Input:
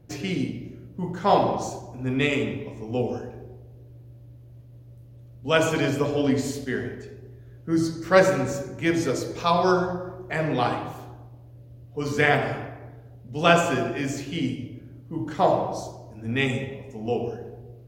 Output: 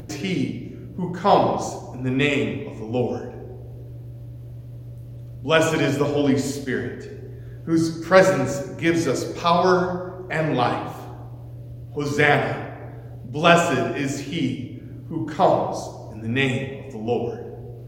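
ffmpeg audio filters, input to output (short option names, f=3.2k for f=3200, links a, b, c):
-af "acompressor=mode=upward:threshold=-32dB:ratio=2.5,volume=3dB"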